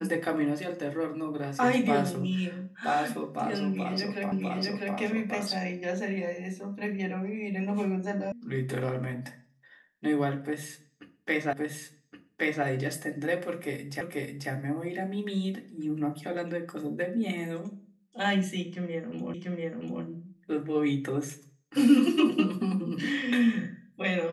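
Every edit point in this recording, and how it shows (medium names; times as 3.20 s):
4.32 s: repeat of the last 0.65 s
8.32 s: sound stops dead
11.53 s: repeat of the last 1.12 s
14.01 s: repeat of the last 0.49 s
19.34 s: repeat of the last 0.69 s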